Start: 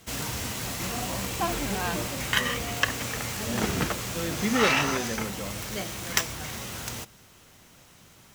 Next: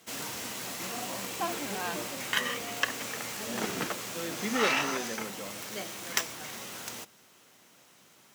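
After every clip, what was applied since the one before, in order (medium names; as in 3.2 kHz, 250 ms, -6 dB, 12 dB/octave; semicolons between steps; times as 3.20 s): high-pass 230 Hz 12 dB/octave; trim -4 dB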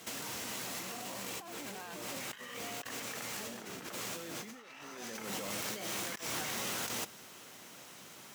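compressor with a negative ratio -43 dBFS, ratio -1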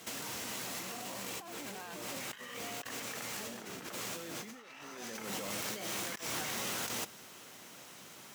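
no audible change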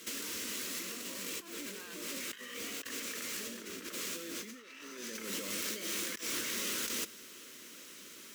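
static phaser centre 320 Hz, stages 4; trim +2.5 dB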